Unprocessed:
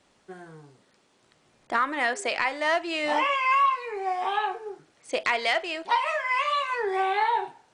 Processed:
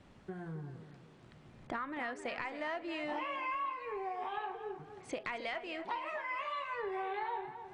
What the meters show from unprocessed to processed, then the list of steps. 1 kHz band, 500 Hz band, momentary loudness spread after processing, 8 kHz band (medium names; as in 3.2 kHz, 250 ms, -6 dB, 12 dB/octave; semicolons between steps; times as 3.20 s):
-14.0 dB, -11.0 dB, 11 LU, -17.5 dB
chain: tone controls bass +13 dB, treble -11 dB; compression 3:1, threshold -43 dBFS, peak gain reduction 18 dB; tape echo 267 ms, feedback 43%, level -10 dB, low-pass 3.1 kHz; trim +1 dB